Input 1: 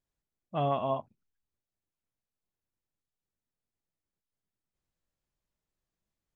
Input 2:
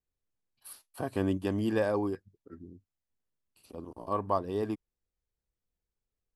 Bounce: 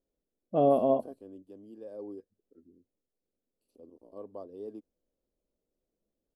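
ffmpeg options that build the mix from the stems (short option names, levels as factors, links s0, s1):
-filter_complex "[0:a]highshelf=f=2400:g=-10.5,volume=1.19,asplit=2[s0][s1];[1:a]adelay=50,volume=0.355,afade=t=in:st=1.84:d=0.25:silence=0.398107[s2];[s1]apad=whole_len=282364[s3];[s2][s3]sidechaingate=range=0.316:threshold=0.00178:ratio=16:detection=peak[s4];[s0][s4]amix=inputs=2:normalize=0,equalizer=f=125:t=o:w=1:g=-9,equalizer=f=250:t=o:w=1:g=8,equalizer=f=500:t=o:w=1:g=12,equalizer=f=1000:t=o:w=1:g=-7,equalizer=f=2000:t=o:w=1:g=-10"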